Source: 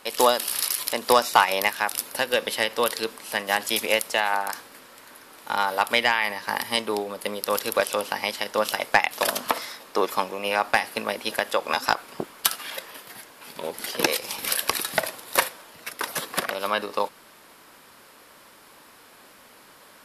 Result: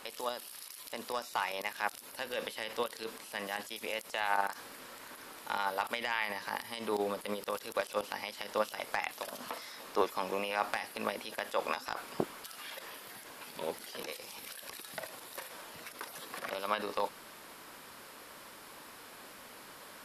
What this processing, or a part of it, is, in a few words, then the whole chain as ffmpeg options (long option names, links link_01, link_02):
de-esser from a sidechain: -filter_complex "[0:a]asplit=2[link_01][link_02];[link_02]highpass=frequency=4400:width=0.5412,highpass=frequency=4400:width=1.3066,apad=whole_len=884104[link_03];[link_01][link_03]sidechaincompress=threshold=-52dB:ratio=4:attack=4.8:release=27"